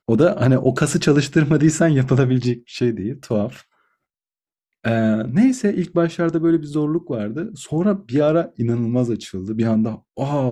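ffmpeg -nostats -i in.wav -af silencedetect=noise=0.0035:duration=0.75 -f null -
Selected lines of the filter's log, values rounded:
silence_start: 3.64
silence_end: 4.84 | silence_duration: 1.20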